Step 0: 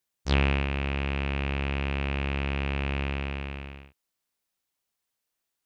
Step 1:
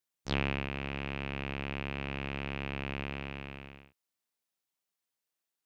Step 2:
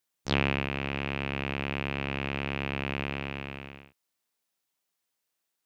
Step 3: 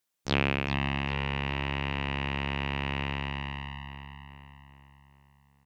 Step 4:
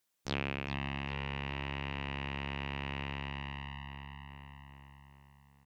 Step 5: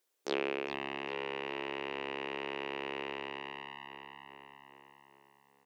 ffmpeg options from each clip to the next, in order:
ffmpeg -i in.wav -af "highpass=110,volume=-5.5dB" out.wav
ffmpeg -i in.wav -af "lowshelf=frequency=61:gain=-7.5,volume=5.5dB" out.wav
ffmpeg -i in.wav -filter_complex "[0:a]asplit=2[link_01][link_02];[link_02]adelay=403,lowpass=frequency=3600:poles=1,volume=-5.5dB,asplit=2[link_03][link_04];[link_04]adelay=403,lowpass=frequency=3600:poles=1,volume=0.53,asplit=2[link_05][link_06];[link_06]adelay=403,lowpass=frequency=3600:poles=1,volume=0.53,asplit=2[link_07][link_08];[link_08]adelay=403,lowpass=frequency=3600:poles=1,volume=0.53,asplit=2[link_09][link_10];[link_10]adelay=403,lowpass=frequency=3600:poles=1,volume=0.53,asplit=2[link_11][link_12];[link_12]adelay=403,lowpass=frequency=3600:poles=1,volume=0.53,asplit=2[link_13][link_14];[link_14]adelay=403,lowpass=frequency=3600:poles=1,volume=0.53[link_15];[link_01][link_03][link_05][link_07][link_09][link_11][link_13][link_15]amix=inputs=8:normalize=0" out.wav
ffmpeg -i in.wav -af "acompressor=threshold=-49dB:ratio=1.5,volume=1dB" out.wav
ffmpeg -i in.wav -af "highpass=frequency=400:width_type=q:width=3.5" out.wav

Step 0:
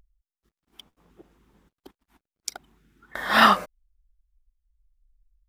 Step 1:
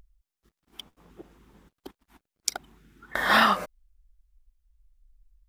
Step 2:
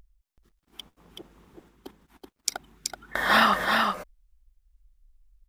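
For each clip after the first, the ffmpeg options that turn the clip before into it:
ffmpeg -i in.wav -af "acompressor=threshold=-21dB:ratio=12,volume=5dB" out.wav
ffmpeg -i in.wav -af "aecho=1:1:378:0.631" out.wav

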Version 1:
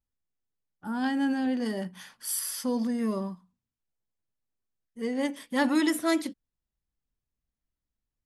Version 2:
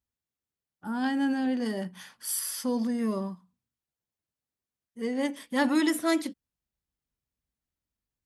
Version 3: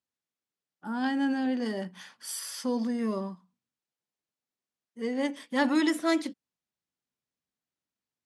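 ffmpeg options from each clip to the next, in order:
ffmpeg -i in.wav -af "highpass=50" out.wav
ffmpeg -i in.wav -af "highpass=180,lowpass=7700" out.wav

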